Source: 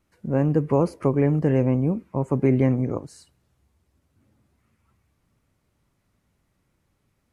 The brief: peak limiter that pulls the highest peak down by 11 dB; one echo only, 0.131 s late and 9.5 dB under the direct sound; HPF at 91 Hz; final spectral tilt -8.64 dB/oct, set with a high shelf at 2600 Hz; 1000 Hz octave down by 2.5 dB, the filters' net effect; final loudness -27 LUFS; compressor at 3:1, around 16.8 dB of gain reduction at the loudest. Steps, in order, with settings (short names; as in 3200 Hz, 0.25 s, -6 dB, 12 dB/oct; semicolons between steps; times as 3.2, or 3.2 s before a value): HPF 91 Hz; bell 1000 Hz -4 dB; high shelf 2600 Hz +6.5 dB; compressor 3:1, threshold -39 dBFS; limiter -34 dBFS; echo 0.131 s -9.5 dB; gain +17 dB